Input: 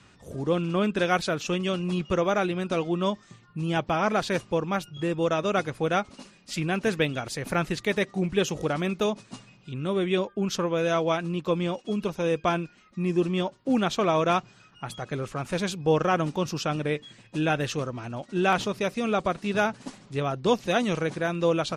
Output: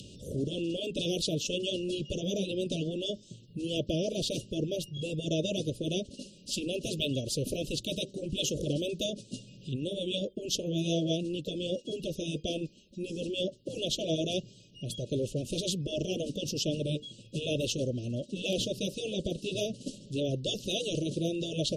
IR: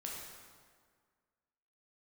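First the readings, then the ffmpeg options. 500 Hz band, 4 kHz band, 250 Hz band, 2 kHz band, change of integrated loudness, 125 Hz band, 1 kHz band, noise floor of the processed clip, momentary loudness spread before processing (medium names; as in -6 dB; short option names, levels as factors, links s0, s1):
-7.0 dB, +2.0 dB, -6.0 dB, -14.0 dB, -6.0 dB, -4.5 dB, under -20 dB, -56 dBFS, 9 LU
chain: -af "acompressor=mode=upward:threshold=0.00891:ratio=2.5,asuperstop=centerf=1300:order=20:qfactor=0.6,afftfilt=real='re*lt(hypot(re,im),0.282)':imag='im*lt(hypot(re,im),0.282)':win_size=1024:overlap=0.75,volume=1.26"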